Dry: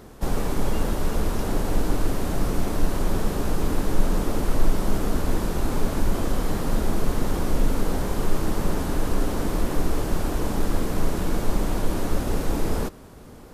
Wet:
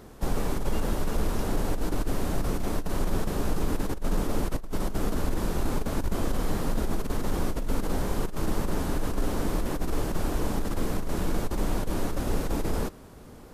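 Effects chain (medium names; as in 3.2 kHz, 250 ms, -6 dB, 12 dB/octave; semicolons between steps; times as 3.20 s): compressor with a negative ratio -19 dBFS, ratio -0.5; trim -4 dB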